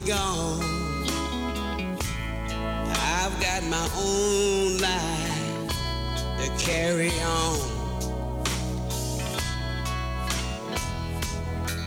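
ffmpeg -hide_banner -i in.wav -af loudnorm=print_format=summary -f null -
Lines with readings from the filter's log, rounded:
Input Integrated:    -27.7 LUFS
Input True Peak:     -12.5 dBTP
Input LRA:             4.3 LU
Input Threshold:     -37.7 LUFS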